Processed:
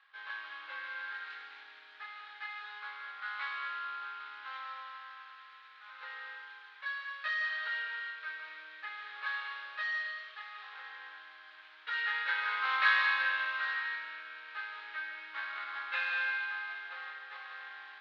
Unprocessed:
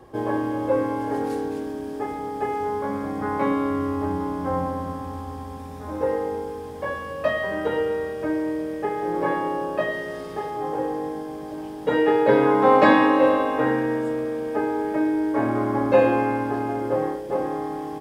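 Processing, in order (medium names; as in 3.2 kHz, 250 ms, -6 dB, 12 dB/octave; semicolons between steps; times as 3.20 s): median filter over 15 samples; Chebyshev band-pass 1.4–4 kHz, order 3; on a send: reverberation RT60 1.2 s, pre-delay 115 ms, DRR 4 dB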